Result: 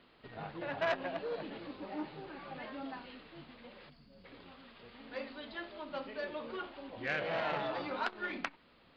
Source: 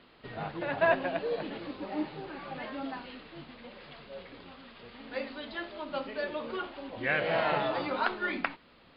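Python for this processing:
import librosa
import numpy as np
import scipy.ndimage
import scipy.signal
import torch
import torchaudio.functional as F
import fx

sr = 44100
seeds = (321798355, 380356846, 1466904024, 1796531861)

y = fx.spec_box(x, sr, start_s=3.9, length_s=0.34, low_hz=310.0, high_hz=4300.0, gain_db=-14)
y = fx.transformer_sat(y, sr, knee_hz=1900.0)
y = F.gain(torch.from_numpy(y), -5.0).numpy()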